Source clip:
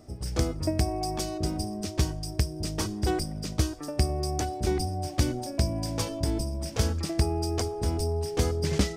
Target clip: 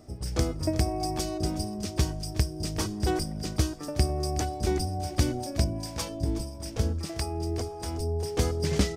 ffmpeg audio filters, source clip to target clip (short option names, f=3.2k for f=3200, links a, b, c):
-filter_complex "[0:a]asettb=1/sr,asplit=3[a][b][c];[a]atrim=end=5.644[d];[b]atrim=start=5.64:end=8.23,asetpts=PTS-STARTPTS,afade=t=in:d=0.004:c=qsin,afade=t=out:st=2.586:d=0.004:c=qsin,acrossover=split=610[e][f];[e]aeval=exprs='val(0)*(1-0.7/2+0.7/2*cos(2*PI*1.6*n/s))':c=same[g];[f]aeval=exprs='val(0)*(1-0.7/2-0.7/2*cos(2*PI*1.6*n/s))':c=same[h];[g][h]amix=inputs=2:normalize=0[i];[c]atrim=start=8.226[j];[d][i]acrossfade=d=0.004:c1=hsin:c2=qsin[k];[k][j]acrossfade=d=0.004:c1=qsin:c2=hsin,aecho=1:1:369:0.178"